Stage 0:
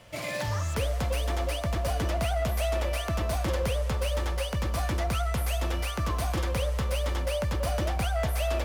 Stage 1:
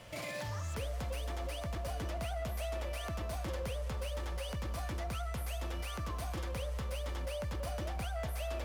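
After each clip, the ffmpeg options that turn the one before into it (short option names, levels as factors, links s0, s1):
-af "alimiter=level_in=2.66:limit=0.0631:level=0:latency=1,volume=0.376"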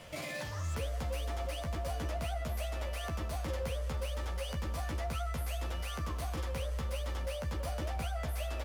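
-filter_complex "[0:a]areverse,acompressor=mode=upward:threshold=0.00891:ratio=2.5,areverse,asplit=2[s0][s1];[s1]adelay=13,volume=0.596[s2];[s0][s2]amix=inputs=2:normalize=0"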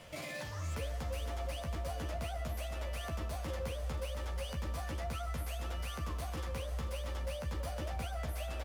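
-af "aecho=1:1:491:0.266,volume=0.75"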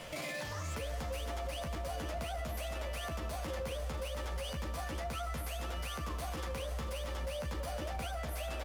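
-af "equalizer=f=83:t=o:w=1.4:g=-6,alimiter=level_in=5.62:limit=0.0631:level=0:latency=1:release=50,volume=0.178,volume=2.37"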